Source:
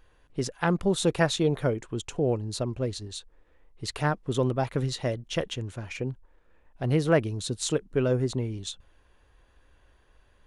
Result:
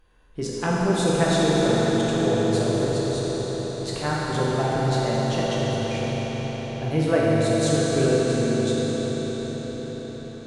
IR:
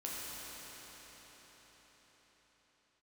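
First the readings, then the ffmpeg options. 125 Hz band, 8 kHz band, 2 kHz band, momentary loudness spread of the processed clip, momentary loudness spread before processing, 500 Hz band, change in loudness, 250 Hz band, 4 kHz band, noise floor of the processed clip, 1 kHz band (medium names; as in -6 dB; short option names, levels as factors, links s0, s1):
+5.0 dB, +4.5 dB, +5.0 dB, 10 LU, 12 LU, +6.5 dB, +5.0 dB, +7.0 dB, +5.0 dB, -37 dBFS, +7.0 dB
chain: -filter_complex "[0:a]bandreject=f=1900:w=29[s0];[1:a]atrim=start_sample=2205,asetrate=33957,aresample=44100[s1];[s0][s1]afir=irnorm=-1:irlink=0,volume=1.19"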